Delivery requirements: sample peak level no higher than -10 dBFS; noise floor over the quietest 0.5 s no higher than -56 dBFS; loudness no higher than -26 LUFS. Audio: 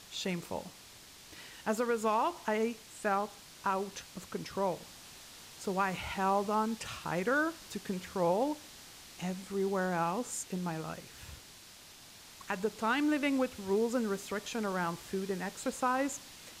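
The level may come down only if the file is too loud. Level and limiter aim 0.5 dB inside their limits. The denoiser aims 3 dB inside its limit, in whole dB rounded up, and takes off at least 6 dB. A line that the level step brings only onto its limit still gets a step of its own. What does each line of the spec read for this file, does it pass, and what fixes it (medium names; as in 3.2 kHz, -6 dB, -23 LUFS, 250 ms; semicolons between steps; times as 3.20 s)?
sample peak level -19.0 dBFS: pass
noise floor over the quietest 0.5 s -54 dBFS: fail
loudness -34.0 LUFS: pass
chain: noise reduction 6 dB, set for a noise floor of -54 dBFS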